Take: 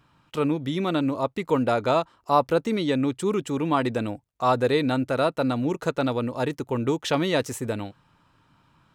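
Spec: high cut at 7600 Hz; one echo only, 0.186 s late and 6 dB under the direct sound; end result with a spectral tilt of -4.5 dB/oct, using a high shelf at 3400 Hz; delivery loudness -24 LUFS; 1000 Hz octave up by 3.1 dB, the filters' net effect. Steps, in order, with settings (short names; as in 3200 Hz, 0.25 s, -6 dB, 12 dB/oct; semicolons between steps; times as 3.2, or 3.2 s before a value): LPF 7600 Hz; bell 1000 Hz +3.5 dB; high shelf 3400 Hz +5.5 dB; echo 0.186 s -6 dB; gain -1 dB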